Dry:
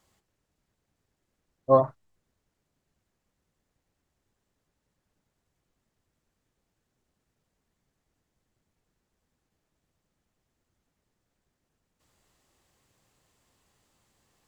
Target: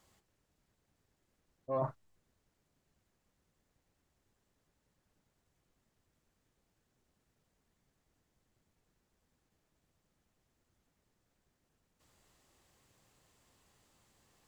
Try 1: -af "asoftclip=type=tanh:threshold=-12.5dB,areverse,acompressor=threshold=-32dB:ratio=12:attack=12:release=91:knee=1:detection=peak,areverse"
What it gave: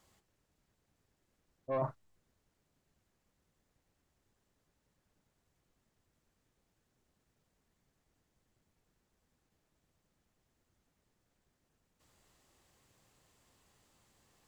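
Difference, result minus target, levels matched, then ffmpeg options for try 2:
soft clipping: distortion +12 dB
-af "asoftclip=type=tanh:threshold=-5dB,areverse,acompressor=threshold=-32dB:ratio=12:attack=12:release=91:knee=1:detection=peak,areverse"

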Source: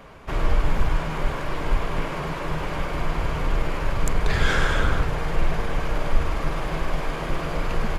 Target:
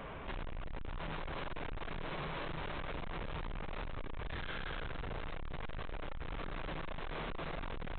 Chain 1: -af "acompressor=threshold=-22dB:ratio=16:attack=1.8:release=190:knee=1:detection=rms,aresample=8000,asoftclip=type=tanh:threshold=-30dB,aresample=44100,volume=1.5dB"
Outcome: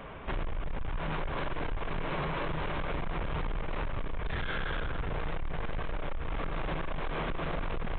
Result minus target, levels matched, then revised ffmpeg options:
soft clipping: distortion −5 dB
-af "acompressor=threshold=-22dB:ratio=16:attack=1.8:release=190:knee=1:detection=rms,aresample=8000,asoftclip=type=tanh:threshold=-40.5dB,aresample=44100,volume=1.5dB"

